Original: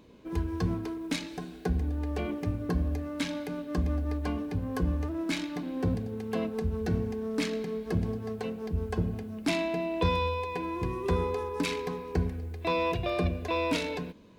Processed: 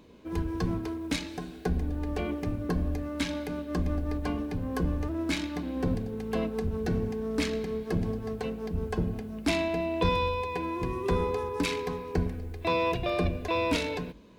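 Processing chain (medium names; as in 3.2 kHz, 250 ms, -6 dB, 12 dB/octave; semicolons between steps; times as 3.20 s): octave divider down 2 oct, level -4 dB; bass shelf 100 Hz -5 dB; hum notches 50/100 Hz; trim +1.5 dB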